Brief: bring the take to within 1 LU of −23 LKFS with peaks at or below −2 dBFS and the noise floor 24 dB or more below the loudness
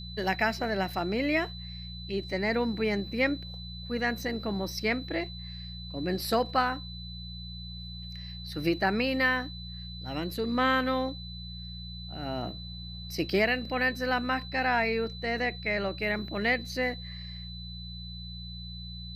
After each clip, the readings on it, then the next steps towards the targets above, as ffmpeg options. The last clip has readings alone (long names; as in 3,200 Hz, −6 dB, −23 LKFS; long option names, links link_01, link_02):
mains hum 60 Hz; hum harmonics up to 180 Hz; level of the hum −39 dBFS; interfering tone 4,000 Hz; level of the tone −43 dBFS; integrated loudness −31.0 LKFS; sample peak −11.5 dBFS; target loudness −23.0 LKFS
→ -af "bandreject=frequency=60:width_type=h:width=4,bandreject=frequency=120:width_type=h:width=4,bandreject=frequency=180:width_type=h:width=4"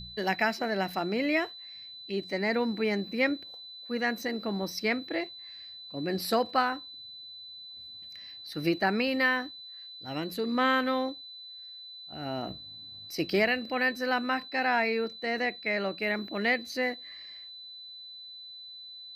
mains hum none found; interfering tone 4,000 Hz; level of the tone −43 dBFS
→ -af "bandreject=frequency=4000:width=30"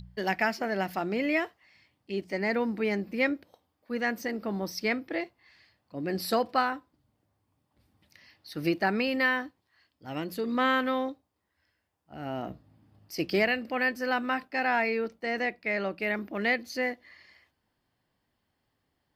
interfering tone none found; integrated loudness −29.5 LKFS; sample peak −12.0 dBFS; target loudness −23.0 LKFS
→ -af "volume=6.5dB"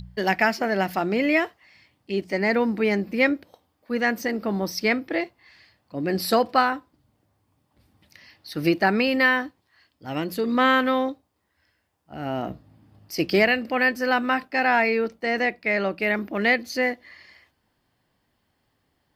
integrated loudness −23.0 LKFS; sample peak −5.5 dBFS; background noise floor −72 dBFS